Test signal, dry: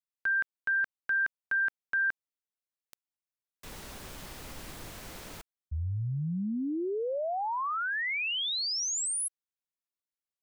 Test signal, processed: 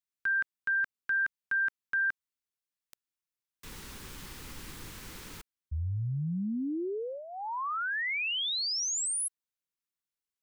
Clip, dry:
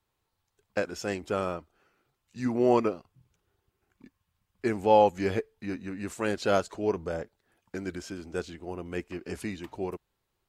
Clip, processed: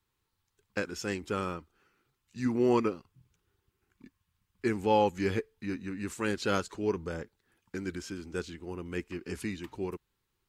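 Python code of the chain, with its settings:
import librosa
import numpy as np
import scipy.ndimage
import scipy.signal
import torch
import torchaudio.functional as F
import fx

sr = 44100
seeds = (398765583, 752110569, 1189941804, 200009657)

y = fx.peak_eq(x, sr, hz=650.0, db=-13.5, octaves=0.53)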